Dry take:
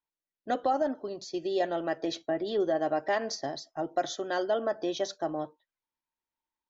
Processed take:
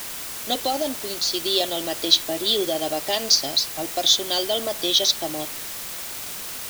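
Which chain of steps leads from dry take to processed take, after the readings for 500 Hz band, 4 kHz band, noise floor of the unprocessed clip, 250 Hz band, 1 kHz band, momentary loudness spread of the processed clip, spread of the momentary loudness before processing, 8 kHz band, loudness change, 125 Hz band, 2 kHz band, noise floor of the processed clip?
+2.5 dB, +22.5 dB, under -85 dBFS, +3.0 dB, +1.5 dB, 12 LU, 8 LU, no reading, +9.5 dB, +4.5 dB, +4.5 dB, -33 dBFS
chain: resonant high shelf 2.4 kHz +13.5 dB, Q 3; word length cut 6-bit, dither triangular; trim +3 dB

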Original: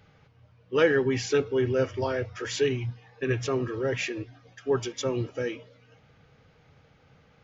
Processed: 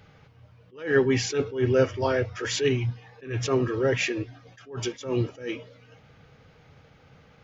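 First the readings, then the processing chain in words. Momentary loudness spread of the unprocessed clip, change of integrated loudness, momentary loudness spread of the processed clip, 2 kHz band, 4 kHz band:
11 LU, +1.5 dB, 13 LU, +1.5 dB, +3.0 dB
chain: attacks held to a fixed rise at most 140 dB/s; trim +4.5 dB

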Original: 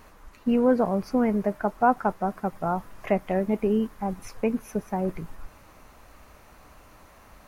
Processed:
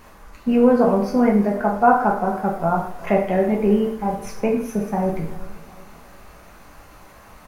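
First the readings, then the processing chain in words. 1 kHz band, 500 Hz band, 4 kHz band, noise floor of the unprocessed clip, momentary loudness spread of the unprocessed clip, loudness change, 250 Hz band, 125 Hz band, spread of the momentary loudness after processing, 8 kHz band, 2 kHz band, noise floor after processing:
+7.0 dB, +6.5 dB, no reading, -53 dBFS, 10 LU, +6.5 dB, +6.0 dB, +6.5 dB, 10 LU, +6.0 dB, +7.0 dB, -46 dBFS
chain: feedback delay 370 ms, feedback 47%, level -20 dB; plate-style reverb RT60 0.58 s, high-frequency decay 0.9×, DRR -1 dB; trim +3 dB

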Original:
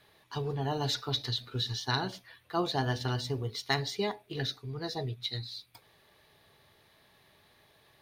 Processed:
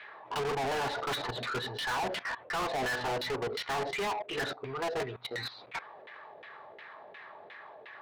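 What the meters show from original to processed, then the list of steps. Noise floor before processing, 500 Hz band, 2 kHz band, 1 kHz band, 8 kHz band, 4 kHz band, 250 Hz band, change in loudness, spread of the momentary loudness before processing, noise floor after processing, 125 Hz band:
-65 dBFS, +2.5 dB, +5.0 dB, +4.0 dB, 0.0 dB, -3.5 dB, -4.5 dB, -0.5 dB, 8 LU, -52 dBFS, -10.5 dB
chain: bass shelf 320 Hz -10.5 dB; LFO low-pass saw down 2.8 Hz 470–2400 Hz; level held to a coarse grid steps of 20 dB; overdrive pedal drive 39 dB, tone 5.7 kHz, clips at -25.5 dBFS

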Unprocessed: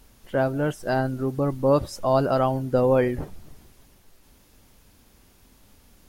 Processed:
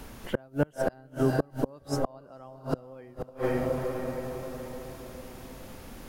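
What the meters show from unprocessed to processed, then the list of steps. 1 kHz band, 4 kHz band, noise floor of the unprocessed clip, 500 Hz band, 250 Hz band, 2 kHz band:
-10.0 dB, -4.5 dB, -57 dBFS, -8.0 dB, -5.0 dB, -5.5 dB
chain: echo that smears into a reverb 464 ms, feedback 42%, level -8 dB; inverted gate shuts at -16 dBFS, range -33 dB; three bands compressed up and down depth 40%; trim +3.5 dB

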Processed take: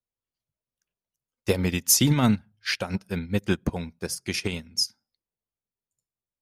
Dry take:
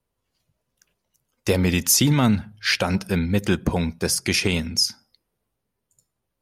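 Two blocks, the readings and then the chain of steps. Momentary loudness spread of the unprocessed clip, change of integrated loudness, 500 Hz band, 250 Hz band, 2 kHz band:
7 LU, -4.0 dB, -4.5 dB, -4.0 dB, -6.5 dB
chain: upward expansion 2.5:1, over -28 dBFS

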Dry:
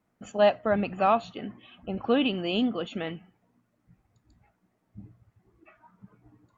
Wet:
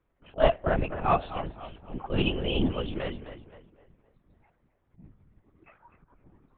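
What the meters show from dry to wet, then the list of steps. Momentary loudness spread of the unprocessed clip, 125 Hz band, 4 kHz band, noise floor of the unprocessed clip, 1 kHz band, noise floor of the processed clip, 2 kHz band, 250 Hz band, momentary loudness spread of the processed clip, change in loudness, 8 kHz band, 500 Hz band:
17 LU, +6.5 dB, -1.0 dB, -74 dBFS, -2.0 dB, -72 dBFS, -1.0 dB, -3.5 dB, 17 LU, -2.0 dB, no reading, -2.5 dB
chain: slow attack 106 ms; tape echo 257 ms, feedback 43%, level -10 dB, low-pass 2.6 kHz; LPC vocoder at 8 kHz whisper

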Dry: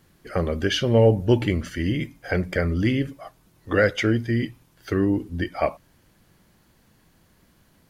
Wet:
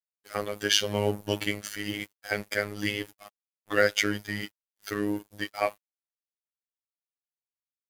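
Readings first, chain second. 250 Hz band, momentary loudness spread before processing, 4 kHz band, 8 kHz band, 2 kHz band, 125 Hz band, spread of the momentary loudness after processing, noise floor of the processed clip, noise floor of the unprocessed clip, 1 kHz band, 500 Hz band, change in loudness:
-10.0 dB, 10 LU, +2.0 dB, +7.0 dB, -1.0 dB, -15.0 dB, 12 LU, under -85 dBFS, -61 dBFS, -3.0 dB, -7.5 dB, -6.0 dB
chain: RIAA curve recording; crossover distortion -40.5 dBFS; robot voice 103 Hz

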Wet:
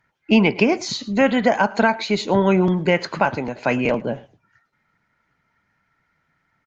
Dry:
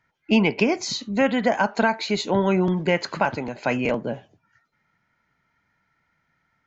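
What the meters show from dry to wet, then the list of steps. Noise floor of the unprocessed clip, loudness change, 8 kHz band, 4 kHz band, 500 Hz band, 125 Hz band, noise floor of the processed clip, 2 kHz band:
-72 dBFS, +3.5 dB, no reading, +2.0 dB, +3.5 dB, +3.5 dB, -70 dBFS, +3.0 dB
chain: resampled via 16 kHz; delay 109 ms -21.5 dB; trim +3.5 dB; Opus 32 kbps 48 kHz

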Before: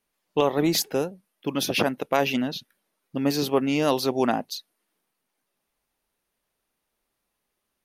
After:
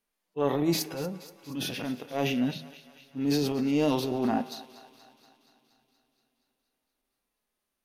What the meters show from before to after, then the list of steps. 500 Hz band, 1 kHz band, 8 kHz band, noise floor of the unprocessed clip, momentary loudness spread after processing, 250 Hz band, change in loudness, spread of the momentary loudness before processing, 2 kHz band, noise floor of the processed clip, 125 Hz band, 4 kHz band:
-6.0 dB, -7.0 dB, -7.0 dB, -80 dBFS, 15 LU, -2.0 dB, -4.5 dB, 12 LU, -8.0 dB, -84 dBFS, -1.0 dB, -6.5 dB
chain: harmonic-percussive split percussive -18 dB; transient shaper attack -8 dB, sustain +7 dB; de-hum 78.62 Hz, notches 37; on a send: thinning echo 237 ms, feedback 67%, high-pass 570 Hz, level -15.5 dB; on the sum: two-slope reverb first 0.29 s, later 4.1 s, from -18 dB, DRR 19 dB

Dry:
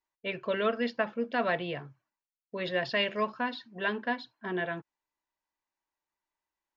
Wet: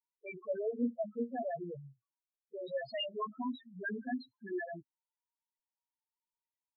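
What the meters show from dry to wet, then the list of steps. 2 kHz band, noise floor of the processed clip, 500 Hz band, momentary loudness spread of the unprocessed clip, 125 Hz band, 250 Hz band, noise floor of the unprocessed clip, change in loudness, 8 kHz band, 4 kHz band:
-12.5 dB, under -85 dBFS, -6.5 dB, 9 LU, -9.0 dB, -3.0 dB, under -85 dBFS, -7.0 dB, no reading, -9.0 dB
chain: loudest bins only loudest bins 2; small resonant body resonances 260/3400 Hz, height 10 dB, ringing for 60 ms; trim -3 dB

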